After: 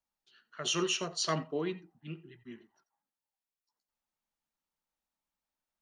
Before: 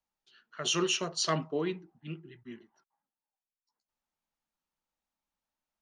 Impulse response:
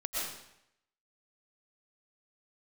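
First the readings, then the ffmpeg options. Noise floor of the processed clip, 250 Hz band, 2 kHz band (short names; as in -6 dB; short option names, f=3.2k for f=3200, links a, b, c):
under -85 dBFS, -2.0 dB, -2.0 dB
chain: -filter_complex "[1:a]atrim=start_sample=2205,atrim=end_sample=3969[a];[0:a][a]afir=irnorm=-1:irlink=0"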